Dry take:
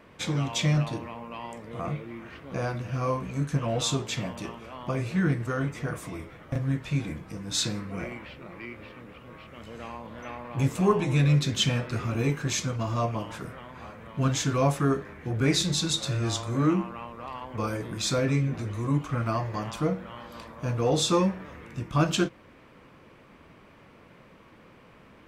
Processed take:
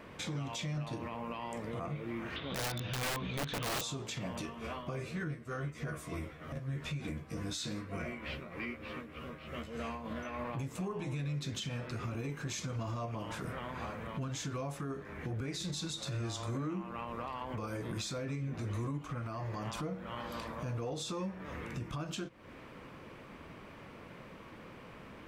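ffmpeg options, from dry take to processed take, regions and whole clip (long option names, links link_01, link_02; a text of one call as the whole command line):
ffmpeg -i in.wav -filter_complex "[0:a]asettb=1/sr,asplit=3[link_01][link_02][link_03];[link_01]atrim=end=2.364[link_04];[link_02]atrim=start=2.36:end=3.81,asetpts=PTS-STARTPTS,afade=type=in:duration=0.004:curve=qsin,afade=type=out:start_time=1.446:duration=0.004:curve=qsin,lowpass=frequency=3600:width_type=q:width=11,aeval=exprs='(mod(14.1*val(0)+1,2)-1)/14.1':channel_layout=same[link_05];[link_03]atrim=start=3.806[link_06];[link_04][link_05]acrossfade=duration=0.004:curve1=hsin:curve2=qsin[link_07];[link_07][link_06]acrossfade=duration=0.004:curve1=qsin:curve2=hsin,asettb=1/sr,asplit=3[link_08][link_09][link_10];[link_08]atrim=end=4.394[link_11];[link_09]atrim=start=4.39:end=10.44,asetpts=PTS-STARTPTS,afade=type=in:duration=0.004:curve=qsin,afade=type=out:start_time=6.046:duration=0.004:curve=qsin,bandreject=frequency=870:width=8.1,tremolo=f=3.3:d=0.65,asplit=2[link_12][link_13];[link_13]adelay=13,volume=-3dB[link_14];[link_12][link_14]amix=inputs=2:normalize=0,atrim=end_sample=266805[link_15];[link_10]atrim=start=10.436[link_16];[link_11][link_15]acrossfade=duration=0.004:curve1=hsin:curve2=qsin[link_17];[link_17][link_16]acrossfade=duration=0.004:curve1=qsin:curve2=hsin,acompressor=threshold=-35dB:ratio=10,alimiter=level_in=8.5dB:limit=-24dB:level=0:latency=1:release=66,volume=-8.5dB,volume=2.5dB" out.wav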